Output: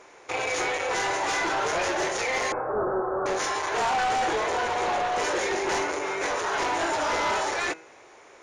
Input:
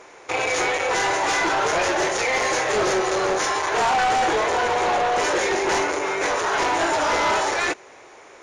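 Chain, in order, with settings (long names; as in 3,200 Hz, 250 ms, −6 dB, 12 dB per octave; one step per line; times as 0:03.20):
0:02.52–0:03.26: Butterworth low-pass 1,500 Hz 72 dB per octave
hum removal 161.2 Hz, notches 16
level −5 dB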